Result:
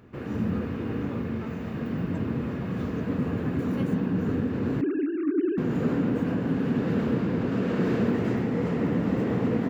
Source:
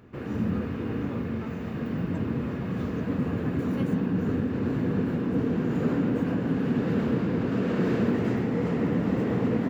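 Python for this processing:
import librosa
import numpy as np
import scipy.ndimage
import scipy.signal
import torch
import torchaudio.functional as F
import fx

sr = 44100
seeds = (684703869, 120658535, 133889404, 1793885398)

y = fx.sine_speech(x, sr, at=(4.81, 5.58))
y = fx.echo_wet_bandpass(y, sr, ms=92, feedback_pct=62, hz=580.0, wet_db=-15)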